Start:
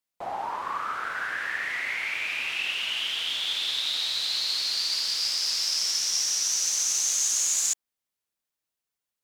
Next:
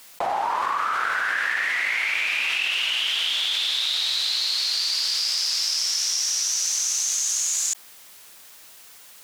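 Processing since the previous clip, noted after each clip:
low-shelf EQ 420 Hz −9 dB
envelope flattener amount 100%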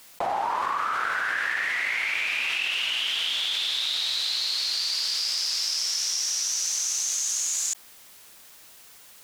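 low-shelf EQ 400 Hz +4.5 dB
level −3 dB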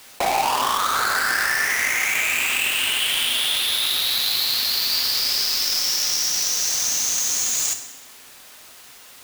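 each half-wave held at its own peak
convolution reverb RT60 1.1 s, pre-delay 4 ms, DRR 5.5 dB
level +1.5 dB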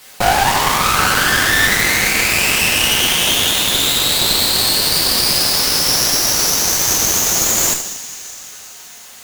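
coupled-rooms reverb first 0.2 s, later 4.7 s, from −21 dB, DRR −2 dB
harmonic generator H 8 −15 dB, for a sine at −1 dBFS
level +1 dB

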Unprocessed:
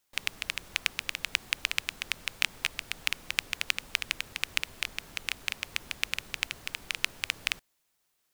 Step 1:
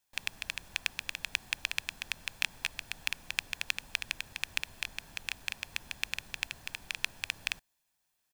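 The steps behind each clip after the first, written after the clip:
comb filter 1.2 ms, depth 38%
level −4.5 dB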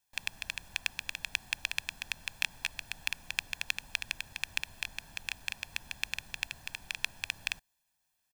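comb filter 1.2 ms, depth 31%
level −1.5 dB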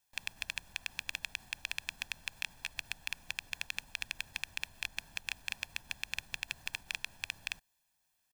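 output level in coarse steps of 21 dB
level +5 dB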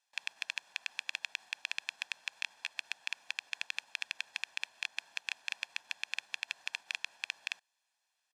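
band-pass filter 630–6,600 Hz
level +1 dB

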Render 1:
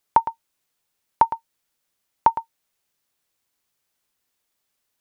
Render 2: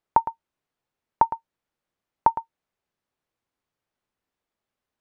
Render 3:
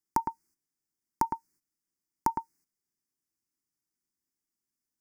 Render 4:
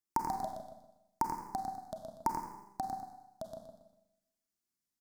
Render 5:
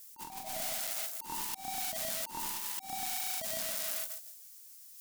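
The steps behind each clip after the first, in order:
low-pass filter 1,100 Hz 6 dB per octave
in parallel at −3 dB: compressor whose output falls as the input rises −23 dBFS, ratio −1; on the sum: noise gate −53 dBFS, range −12 dB; drawn EQ curve 100 Hz 0 dB, 200 Hz +5 dB, 330 Hz +7 dB, 590 Hz −15 dB, 850 Hz −5 dB, 1,300 Hz −3 dB, 2,100 Hz +1 dB, 3,500 Hz −23 dB, 4,900 Hz +13 dB, 7,000 Hz +15 dB; level −6 dB
repeating echo 85 ms, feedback 32%, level −6 dB; delay with pitch and tempo change per echo 107 ms, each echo −3 semitones, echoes 2, each echo −6 dB; four-comb reverb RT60 0.86 s, combs from 31 ms, DRR 5 dB; level −5 dB
spike at every zero crossing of −25 dBFS; volume swells 286 ms; compressor whose output falls as the input rises −39 dBFS, ratio −0.5

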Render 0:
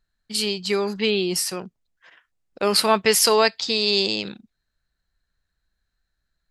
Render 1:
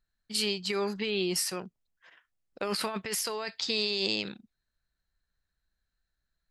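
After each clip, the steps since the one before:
dynamic equaliser 1,800 Hz, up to +4 dB, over −37 dBFS, Q 1.1
compressor whose output falls as the input rises −22 dBFS, ratio −1
level −8.5 dB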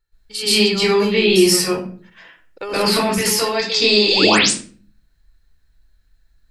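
sound drawn into the spectrogram rise, 0:04.07–0:04.39, 260–10,000 Hz −30 dBFS
convolution reverb RT60 0.45 s, pre-delay 119 ms, DRR −11 dB
level +1.5 dB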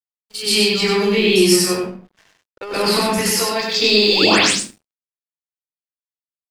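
dead-zone distortion −41 dBFS
single-tap delay 96 ms −4 dB
level −1 dB

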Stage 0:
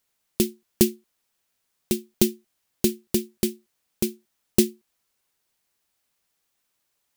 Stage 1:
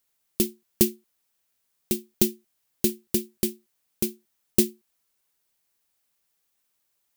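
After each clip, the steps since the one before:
high-shelf EQ 9,600 Hz +6.5 dB
level −3 dB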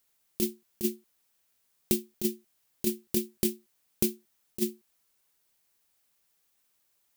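compressor whose output falls as the input rises −23 dBFS, ratio −0.5
level −1.5 dB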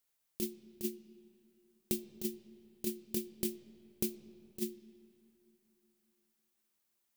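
convolution reverb RT60 3.0 s, pre-delay 35 ms, DRR 15 dB
level −8 dB

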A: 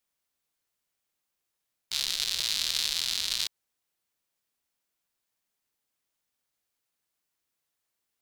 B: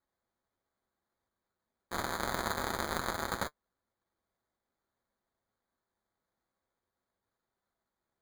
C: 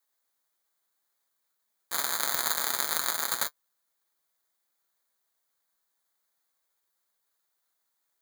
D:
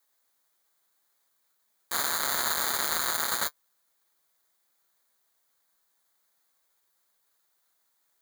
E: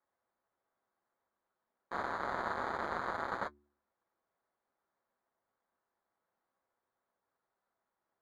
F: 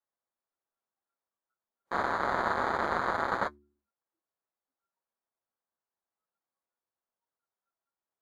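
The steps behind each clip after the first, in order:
decimation without filtering 16×; notch comb filter 150 Hz; level −4 dB
spectral tilt +4.5 dB per octave
hard clipping −17 dBFS, distortion −5 dB; level +5.5 dB
low-pass filter 1,100 Hz 12 dB per octave; hum removal 72.3 Hz, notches 5
noise reduction from a noise print of the clip's start 18 dB; level +7.5 dB

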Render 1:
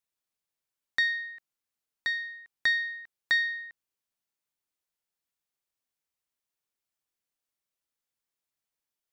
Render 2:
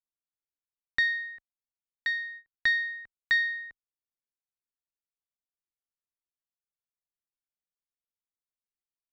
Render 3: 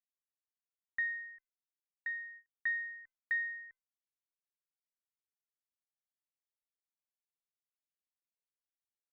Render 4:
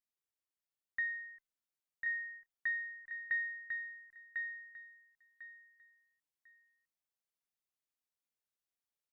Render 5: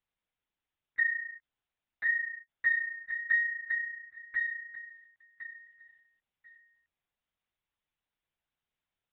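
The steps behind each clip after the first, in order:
noise gate −45 dBFS, range −22 dB; spectral tilt −3 dB per octave; level +3.5 dB
transistor ladder low-pass 2,100 Hz, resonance 60%; tuned comb filter 510 Hz, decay 0.24 s, harmonics all, mix 50%; level −3 dB
repeating echo 1,048 ms, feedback 23%, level −4.5 dB; level −1.5 dB
linear-prediction vocoder at 8 kHz whisper; level +8 dB

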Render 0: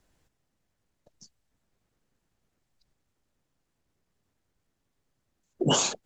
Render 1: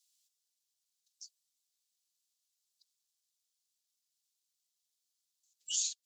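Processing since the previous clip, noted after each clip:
inverse Chebyshev high-pass filter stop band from 870 Hz, stop band 70 dB
downward compressor 1.5 to 1, threshold −49 dBFS, peak gain reduction 9 dB
level +3.5 dB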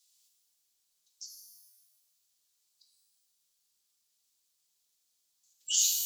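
reverb with rising layers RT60 1.2 s, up +12 semitones, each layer −2 dB, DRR 1.5 dB
level +5 dB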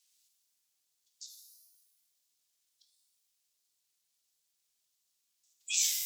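ring modulator whose carrier an LFO sweeps 640 Hz, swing 40%, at 1.5 Hz

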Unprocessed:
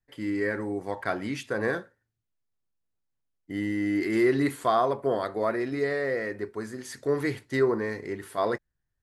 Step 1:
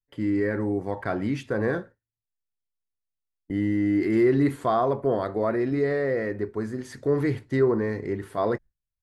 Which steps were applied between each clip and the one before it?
noise gate with hold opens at −43 dBFS
spectral tilt −2.5 dB per octave
in parallel at −2 dB: brickwall limiter −20.5 dBFS, peak gain reduction 10.5 dB
on the sum: level −3.5 dB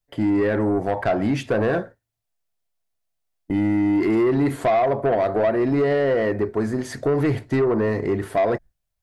parametric band 670 Hz +10 dB 0.41 octaves
downward compressor 4 to 1, threshold −22 dBFS, peak gain reduction 8.5 dB
soft clipping −22.5 dBFS, distortion −14 dB
level +8.5 dB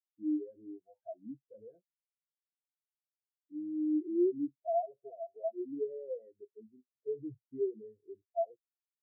every bin expanded away from the loudest bin 4 to 1
level −7.5 dB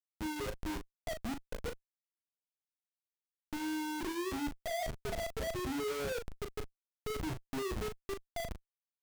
mains hum 60 Hz, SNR 25 dB
comparator with hysteresis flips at −47.5 dBFS
double-tracking delay 38 ms −7 dB
level +1.5 dB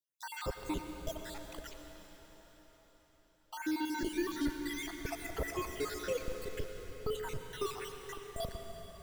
time-frequency cells dropped at random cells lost 66%
convolution reverb RT60 4.9 s, pre-delay 82 ms, DRR 5 dB
level +4 dB

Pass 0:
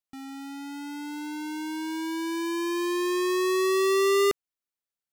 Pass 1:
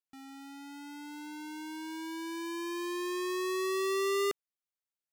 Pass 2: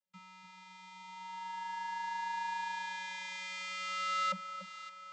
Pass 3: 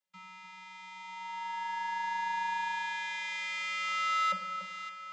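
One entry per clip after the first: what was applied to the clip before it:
low-shelf EQ 220 Hz −6.5 dB; level −7 dB
delay that swaps between a low-pass and a high-pass 286 ms, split 1,300 Hz, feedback 71%, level −9 dB; channel vocoder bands 32, square 186 Hz; level −4 dB
mid-hump overdrive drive 8 dB, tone 5,600 Hz, clips at −24 dBFS; rectangular room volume 570 cubic metres, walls mixed, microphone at 0.57 metres

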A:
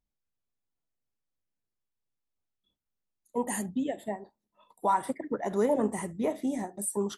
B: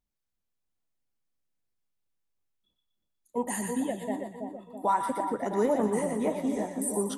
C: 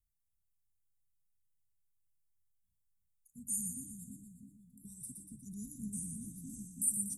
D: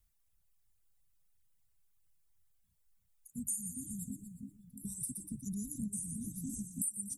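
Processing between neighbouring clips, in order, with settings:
echo with a time of its own for lows and highs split 970 Hz, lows 328 ms, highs 120 ms, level −5 dB
inverse Chebyshev band-stop filter 520–2,300 Hz, stop band 70 dB; level +2 dB
downward compressor 6 to 1, threshold −45 dBFS, peak gain reduction 17 dB; reverb reduction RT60 1.1 s; level +10.5 dB

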